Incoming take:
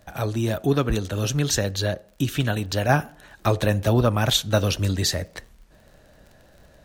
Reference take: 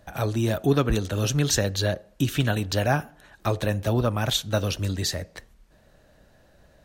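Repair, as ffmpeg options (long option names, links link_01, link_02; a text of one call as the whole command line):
ffmpeg -i in.wav -af "adeclick=threshold=4,asetnsamples=nb_out_samples=441:pad=0,asendcmd='2.89 volume volume -4dB',volume=0dB" out.wav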